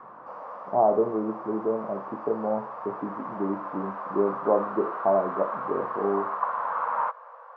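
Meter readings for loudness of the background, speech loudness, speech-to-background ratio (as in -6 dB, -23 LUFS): -33.5 LUFS, -28.0 LUFS, 5.5 dB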